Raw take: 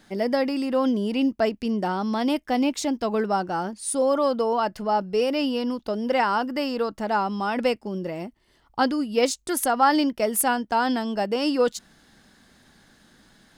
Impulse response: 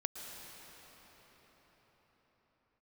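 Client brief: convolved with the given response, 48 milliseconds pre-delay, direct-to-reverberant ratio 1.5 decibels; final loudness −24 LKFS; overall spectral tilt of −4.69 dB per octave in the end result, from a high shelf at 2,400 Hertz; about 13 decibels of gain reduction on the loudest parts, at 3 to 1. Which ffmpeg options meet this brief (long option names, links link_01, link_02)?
-filter_complex "[0:a]highshelf=frequency=2400:gain=-5,acompressor=threshold=-34dB:ratio=3,asplit=2[link_01][link_02];[1:a]atrim=start_sample=2205,adelay=48[link_03];[link_02][link_03]afir=irnorm=-1:irlink=0,volume=-2dB[link_04];[link_01][link_04]amix=inputs=2:normalize=0,volume=8.5dB"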